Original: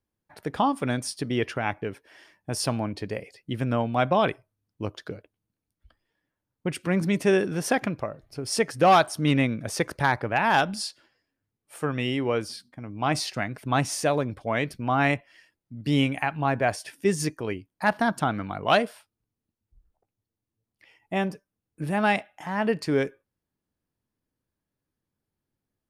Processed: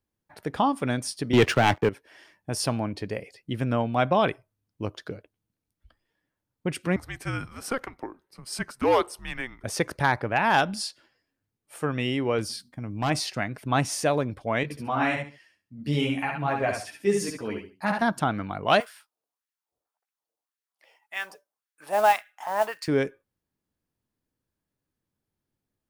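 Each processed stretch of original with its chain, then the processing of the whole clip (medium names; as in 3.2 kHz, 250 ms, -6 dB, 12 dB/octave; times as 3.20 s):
1.33–1.89 s: waveshaping leveller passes 3 + three bands expanded up and down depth 40%
6.96–9.64 s: high-pass 750 Hz + frequency shift -260 Hz + peaking EQ 4.5 kHz -7 dB 2.8 oct
12.38–13.10 s: tone controls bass +5 dB, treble +5 dB + overload inside the chain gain 20.5 dB
14.63–18.02 s: high-pass 60 Hz + feedback delay 69 ms, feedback 24%, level -4.5 dB + three-phase chorus
18.80–22.88 s: peaking EQ 2.1 kHz -5.5 dB 1.3 oct + LFO high-pass sine 1.8 Hz 560–1800 Hz + modulation noise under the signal 21 dB
whole clip: none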